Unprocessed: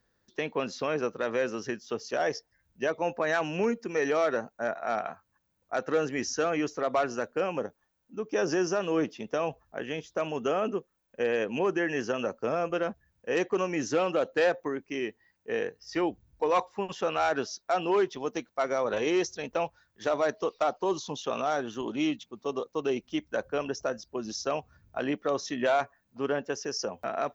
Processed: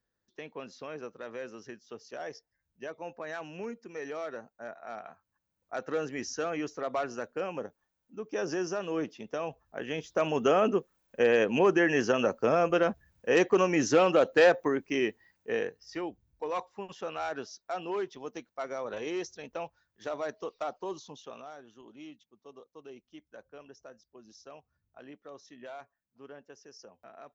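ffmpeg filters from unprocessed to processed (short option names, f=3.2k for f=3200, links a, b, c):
-af "volume=4dB,afade=t=in:st=5.03:d=0.84:silence=0.473151,afade=t=in:st=9.62:d=0.77:silence=0.354813,afade=t=out:st=15.07:d=0.95:silence=0.251189,afade=t=out:st=20.79:d=0.76:silence=0.281838"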